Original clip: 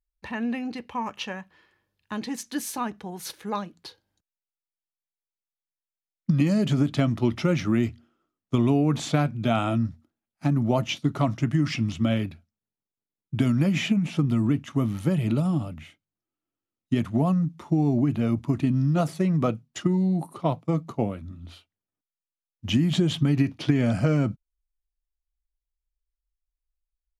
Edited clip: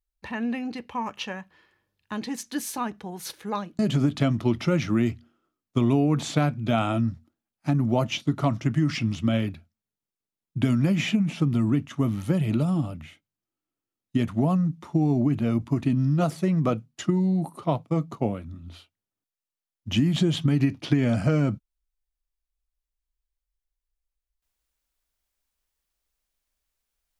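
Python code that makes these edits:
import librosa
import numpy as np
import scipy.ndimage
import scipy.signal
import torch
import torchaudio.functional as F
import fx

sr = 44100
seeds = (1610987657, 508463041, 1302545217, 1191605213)

y = fx.edit(x, sr, fx.cut(start_s=3.79, length_s=2.77), tone=tone)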